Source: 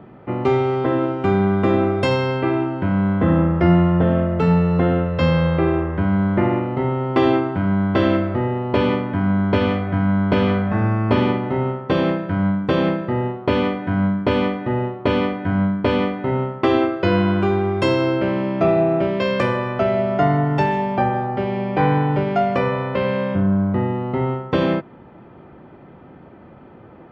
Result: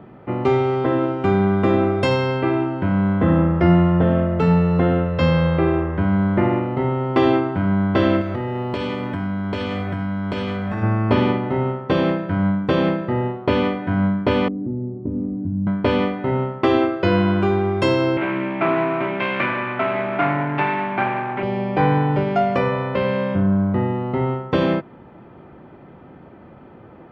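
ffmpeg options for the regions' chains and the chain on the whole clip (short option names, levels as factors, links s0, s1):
-filter_complex "[0:a]asettb=1/sr,asplit=3[s0][s1][s2];[s0]atrim=end=8.214[s3];[s1]atrim=start=8.21:end=10.83,asetpts=PTS-STARTPTS,afade=t=in:d=0.004:c=qsin,afade=t=out:st=2.616:d=0.004:c=qsin,aemphasis=mode=production:type=75fm,acompressor=threshold=0.1:ratio=10:attack=3.2:release=140:knee=1:detection=peak[s4];[s2]atrim=start=10.826[s5];[s3][s4]acrossfade=d=0.004:c1=hsin:c2=qsin[s6];[s6][s5]acrossfade=d=0.004:c1=qsin:c2=hsin,asettb=1/sr,asplit=3[s7][s8][s9];[s7]atrim=end=14.484[s10];[s8]atrim=start=14.48:end=15.67,asetpts=PTS-STARTPTS,afade=t=in:d=0.004:c=qsin,afade=t=out:st=1.186:d=0.004:c=qsin,asubboost=boost=6.5:cutoff=190,acompressor=threshold=0.0447:ratio=3:attack=3.2:release=140:knee=1:detection=peak,lowpass=f=280:t=q:w=2.5[s11];[s9]atrim=start=15.666[s12];[s10][s11]acrossfade=d=0.004:c1=hsin:c2=qsin[s13];[s13][s12]acrossfade=d=0.004:c1=qsin:c2=hsin,asettb=1/sr,asplit=3[s14][s15][s16];[s14]atrim=end=18.174[s17];[s15]atrim=start=18.17:end=21.43,asetpts=PTS-STARTPTS,afade=t=in:d=0.004:c=qsin,afade=t=out:st=3.256:d=0.004:c=qsin,aeval=exprs='clip(val(0),-1,0.0531)':c=same,highpass=f=130:w=0.5412,highpass=f=130:w=1.3066,equalizer=f=210:t=q:w=4:g=-4,equalizer=f=300:t=q:w=4:g=5,equalizer=f=490:t=q:w=4:g=-9,equalizer=f=980:t=q:w=4:g=3,equalizer=f=1500:t=q:w=4:g=5,equalizer=f=2300:t=q:w=4:g=10,lowpass=f=3300:w=0.5412,lowpass=f=3300:w=1.3066[s18];[s16]atrim=start=21.426[s19];[s17][s18]acrossfade=d=0.004:c1=hsin:c2=qsin[s20];[s20][s19]acrossfade=d=0.004:c1=qsin:c2=hsin"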